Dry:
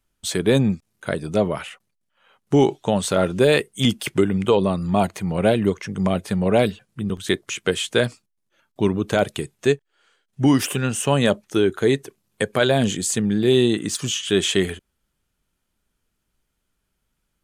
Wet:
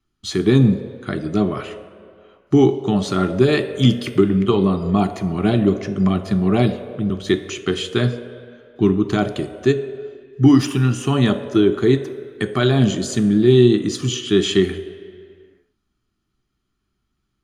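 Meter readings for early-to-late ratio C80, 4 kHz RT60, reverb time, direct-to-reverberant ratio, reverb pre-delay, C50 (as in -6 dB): 13.0 dB, 1.6 s, 2.2 s, 7.5 dB, 3 ms, 11.5 dB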